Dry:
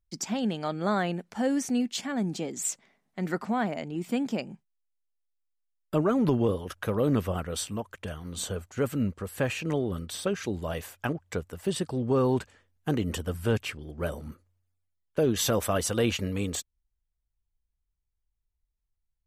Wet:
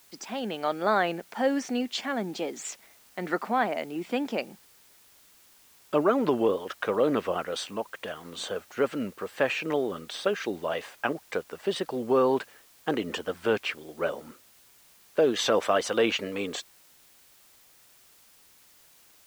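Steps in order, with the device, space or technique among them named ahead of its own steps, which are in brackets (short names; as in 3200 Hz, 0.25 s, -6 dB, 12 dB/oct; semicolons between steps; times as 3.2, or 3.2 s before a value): dictaphone (BPF 380–4000 Hz; AGC gain up to 5 dB; wow and flutter; white noise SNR 28 dB)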